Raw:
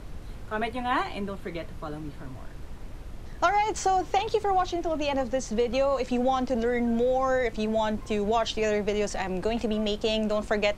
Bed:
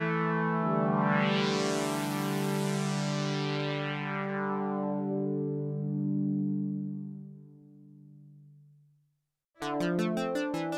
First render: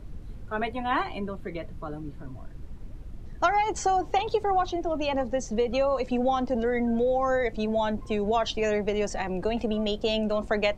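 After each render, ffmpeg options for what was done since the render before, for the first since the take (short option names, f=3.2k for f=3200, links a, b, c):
-af "afftdn=nr=10:nf=-41"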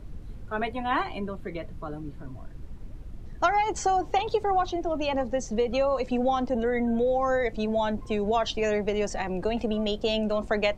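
-filter_complex "[0:a]asettb=1/sr,asplit=3[a][b][c];[a]atrim=end=6.494[d];[b]atrim=start=6.49:end=7.05,asetpts=PTS-STARTPTS,afade=t=in:d=0.004:c=qsin,afade=t=out:st=0.556:d=0.004:c=qsin,asuperstop=centerf=5000:order=8:qfactor=3.6[e];[c]atrim=start=7.046[f];[d][e]acrossfade=d=0.004:c1=hsin:c2=qsin[g];[g][f]acrossfade=d=0.004:c1=qsin:c2=hsin"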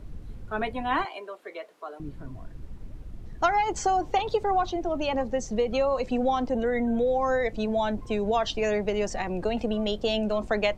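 -filter_complex "[0:a]asettb=1/sr,asplit=3[a][b][c];[a]atrim=end=1.054[d];[b]atrim=start=1.05:end=2,asetpts=PTS-STARTPTS,afade=t=in:d=0.004:c=qsin,afade=t=out:st=0.946:d=0.004:c=qsin,highpass=f=440:w=0.5412,highpass=f=440:w=1.3066[e];[c]atrim=start=1.996[f];[d][e]acrossfade=d=0.004:c1=hsin:c2=qsin[g];[g][f]acrossfade=d=0.004:c1=qsin:c2=hsin"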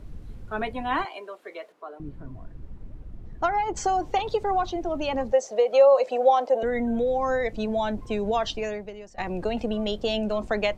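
-filter_complex "[0:a]asettb=1/sr,asplit=3[a][b][c];[a]atrim=end=1.724[d];[b]atrim=start=1.72:end=3.77,asetpts=PTS-STARTPTS,afade=t=in:d=0.004:c=qsin,afade=t=out:st=2.046:d=0.004:c=qsin,highshelf=f=2.7k:g=-11[e];[c]atrim=start=3.766[f];[d][e]acrossfade=d=0.004:c1=hsin:c2=qsin[g];[g][f]acrossfade=d=0.004:c1=qsin:c2=hsin,asettb=1/sr,asplit=3[h][i][j];[h]atrim=end=5.324[k];[i]atrim=start=5.32:end=6.63,asetpts=PTS-STARTPTS,afade=t=in:d=0.004:c=qsin,afade=t=out:st=1.306:d=0.004:c=qsin,highpass=f=590:t=q:w=3.7[l];[j]atrim=start=6.626[m];[k][l]acrossfade=d=0.004:c1=hsin:c2=qsin[n];[n][m]acrossfade=d=0.004:c1=qsin:c2=hsin,asplit=2[o][p];[o]atrim=end=9.18,asetpts=PTS-STARTPTS,afade=t=out:st=8.49:d=0.69:c=qua:silence=0.125893[q];[p]atrim=start=9.18,asetpts=PTS-STARTPTS,afade=t=in:d=0.004:c=hsin:silence=0.125893[r];[q][r]concat=n=2:v=0:a=1"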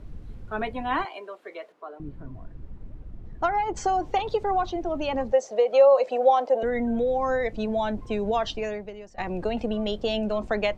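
-af "highshelf=f=6.6k:g=-8"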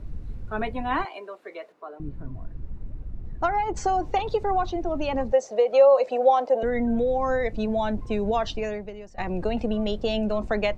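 -af "lowshelf=f=160:g=6,bandreject=f=3.2k:w=16"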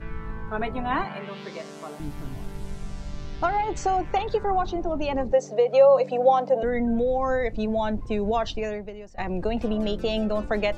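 -filter_complex "[1:a]volume=-11.5dB[a];[0:a][a]amix=inputs=2:normalize=0"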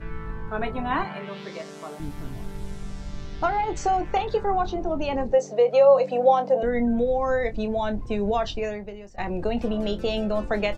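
-filter_complex "[0:a]asplit=2[a][b];[b]adelay=25,volume=-10.5dB[c];[a][c]amix=inputs=2:normalize=0"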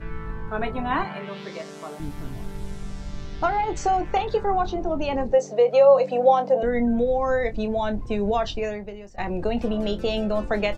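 -af "volume=1dB"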